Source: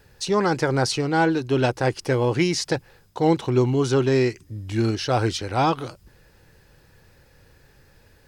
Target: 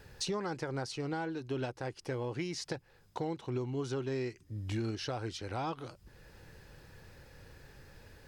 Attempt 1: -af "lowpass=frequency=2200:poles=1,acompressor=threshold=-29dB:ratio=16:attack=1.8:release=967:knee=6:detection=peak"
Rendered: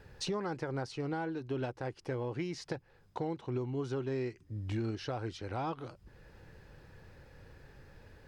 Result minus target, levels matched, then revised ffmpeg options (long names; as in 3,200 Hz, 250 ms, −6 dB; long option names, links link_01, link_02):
8,000 Hz band −5.5 dB
-af "lowpass=frequency=8700:poles=1,acompressor=threshold=-29dB:ratio=16:attack=1.8:release=967:knee=6:detection=peak"